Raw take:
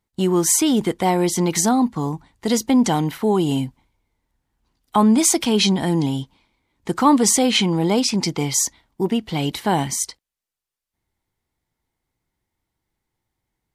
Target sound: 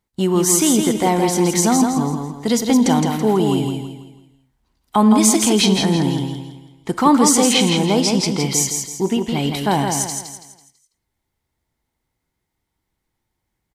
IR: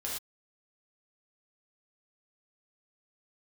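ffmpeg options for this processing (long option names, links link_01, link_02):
-filter_complex "[0:a]aecho=1:1:165|330|495|660|825:0.562|0.214|0.0812|0.0309|0.0117,asplit=2[link_01][link_02];[1:a]atrim=start_sample=2205[link_03];[link_02][link_03]afir=irnorm=-1:irlink=0,volume=-15dB[link_04];[link_01][link_04]amix=inputs=2:normalize=0"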